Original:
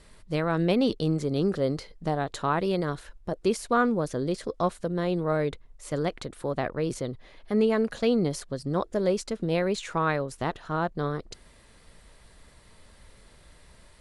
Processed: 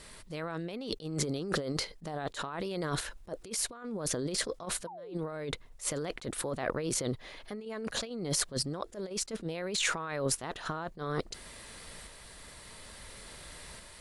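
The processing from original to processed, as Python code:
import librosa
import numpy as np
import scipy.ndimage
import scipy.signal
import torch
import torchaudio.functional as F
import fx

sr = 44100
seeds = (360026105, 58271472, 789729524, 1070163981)

p1 = fx.tilt_eq(x, sr, slope=1.5)
p2 = fx.level_steps(p1, sr, step_db=23)
p3 = p1 + (p2 * librosa.db_to_amplitude(-1.0))
p4 = fx.spec_paint(p3, sr, seeds[0], shape='fall', start_s=4.87, length_s=0.27, low_hz=330.0, high_hz=1000.0, level_db=-17.0)
p5 = fx.over_compress(p4, sr, threshold_db=-34.0, ratio=-1.0)
p6 = fx.tremolo_shape(p5, sr, shape='saw_up', hz=0.58, depth_pct=35)
y = fx.attack_slew(p6, sr, db_per_s=260.0)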